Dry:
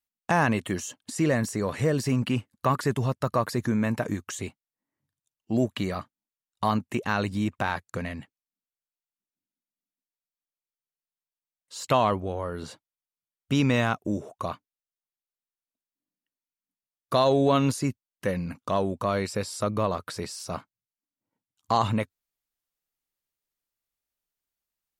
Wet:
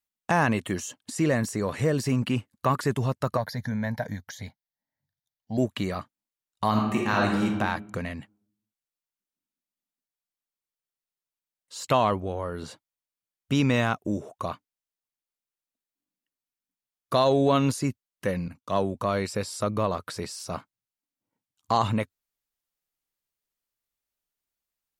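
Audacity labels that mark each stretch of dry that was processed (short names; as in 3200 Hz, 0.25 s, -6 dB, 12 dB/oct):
3.370000	5.580000	fixed phaser centre 1800 Hz, stages 8
6.690000	7.450000	reverb throw, RT60 1.1 s, DRR -1.5 dB
18.480000	18.950000	three-band expander depth 70%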